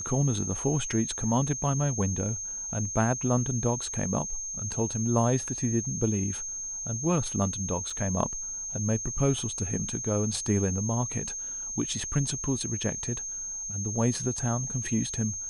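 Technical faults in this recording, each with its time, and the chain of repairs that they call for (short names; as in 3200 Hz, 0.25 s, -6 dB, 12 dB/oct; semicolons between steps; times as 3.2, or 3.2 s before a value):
tone 6400 Hz -33 dBFS
7.9 gap 4.2 ms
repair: notch 6400 Hz, Q 30; interpolate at 7.9, 4.2 ms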